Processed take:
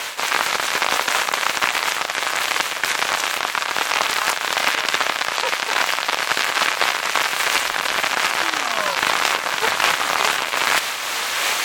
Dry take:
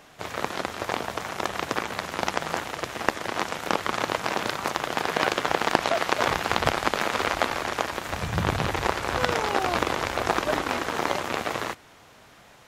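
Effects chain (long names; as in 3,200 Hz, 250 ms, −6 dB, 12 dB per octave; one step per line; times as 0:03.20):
camcorder AGC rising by 6.2 dB per second
high-pass filter 1,100 Hz 12 dB per octave
notch filter 1,500 Hz, Q 9.6
reversed playback
downward compressor 12 to 1, threshold −39 dBFS, peak gain reduction 22.5 dB
reversed playback
ring modulation 200 Hz
wrong playback speed 44.1 kHz file played as 48 kHz
boost into a limiter +32 dB
amplitude modulation by smooth noise, depth 55%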